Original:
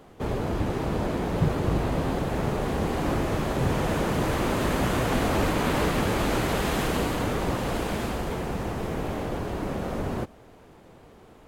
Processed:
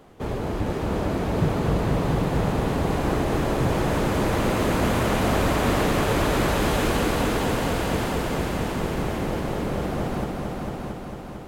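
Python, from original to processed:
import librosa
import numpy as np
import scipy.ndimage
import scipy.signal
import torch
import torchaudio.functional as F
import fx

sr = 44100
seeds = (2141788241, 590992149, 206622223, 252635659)

y = fx.echo_heads(x, sr, ms=225, heads='all three', feedback_pct=61, wet_db=-8.0)
y = np.clip(10.0 ** (12.5 / 20.0) * y, -1.0, 1.0) / 10.0 ** (12.5 / 20.0)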